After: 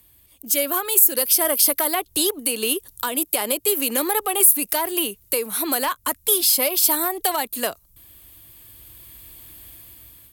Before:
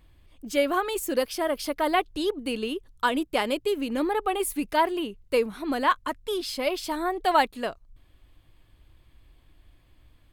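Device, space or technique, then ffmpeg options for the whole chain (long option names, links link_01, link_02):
FM broadcast chain: -filter_complex "[0:a]highpass=62,dynaudnorm=framelen=570:gausssize=5:maxgain=15.5dB,acrossover=split=180|410|1400[link_01][link_02][link_03][link_04];[link_01]acompressor=threshold=-47dB:ratio=4[link_05];[link_02]acompressor=threshold=-31dB:ratio=4[link_06];[link_03]acompressor=threshold=-18dB:ratio=4[link_07];[link_04]acompressor=threshold=-28dB:ratio=4[link_08];[link_05][link_06][link_07][link_08]amix=inputs=4:normalize=0,aemphasis=mode=production:type=50fm,alimiter=limit=-12.5dB:level=0:latency=1:release=223,asoftclip=type=hard:threshold=-15dB,lowpass=frequency=15000:width=0.5412,lowpass=frequency=15000:width=1.3066,aemphasis=mode=production:type=50fm,volume=-1dB"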